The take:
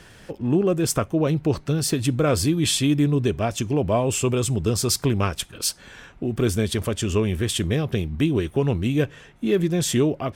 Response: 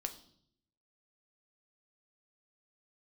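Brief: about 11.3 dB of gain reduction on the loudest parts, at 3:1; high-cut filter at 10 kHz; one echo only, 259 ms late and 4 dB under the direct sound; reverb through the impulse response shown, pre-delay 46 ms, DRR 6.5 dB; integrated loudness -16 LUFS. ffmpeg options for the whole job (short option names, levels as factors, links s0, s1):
-filter_complex "[0:a]lowpass=10000,acompressor=threshold=0.0251:ratio=3,aecho=1:1:259:0.631,asplit=2[s0][s1];[1:a]atrim=start_sample=2205,adelay=46[s2];[s1][s2]afir=irnorm=-1:irlink=0,volume=0.531[s3];[s0][s3]amix=inputs=2:normalize=0,volume=5.31"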